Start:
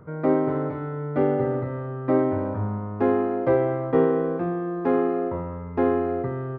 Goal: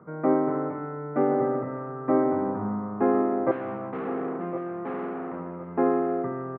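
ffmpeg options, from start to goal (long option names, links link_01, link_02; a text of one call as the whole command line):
ffmpeg -i in.wav -filter_complex "[0:a]asettb=1/sr,asplit=3[link_01][link_02][link_03];[link_01]atrim=end=3.514[link_04];[link_02]atrim=start=3.51:end=5.68,asetpts=PTS-STARTPTS,afade=type=in:duration=0.004:curve=qsin,afade=type=out:start_time=2.166:duration=0.004:curve=qsin,aeval=exprs='(tanh(28.2*val(0)+0.55)-tanh(0.55))/28.2':channel_layout=same[link_05];[link_03]atrim=start=5.676[link_06];[link_04][link_05]acrossfade=duration=0.004:curve1=hsin:curve2=qsin[link_07];[link_07][link_06]acrossfade=duration=0.004:curve1=qsin:curve2=hsin,highpass=frequency=130:width=0.5412,highpass=frequency=130:width=1.3066,equalizer=frequency=140:width_type=q:width=4:gain=-5,equalizer=frequency=200:width_type=q:width=4:gain=7,equalizer=frequency=330:width_type=q:width=4:gain=3,equalizer=frequency=750:width_type=q:width=4:gain=5,equalizer=frequency=1200:width_type=q:width=4:gain=6,lowpass=frequency=2300:width=0.5412,lowpass=frequency=2300:width=1.3066,aecho=1:1:1061|2122|3183:0.237|0.0783|0.0258,volume=-3.5dB" out.wav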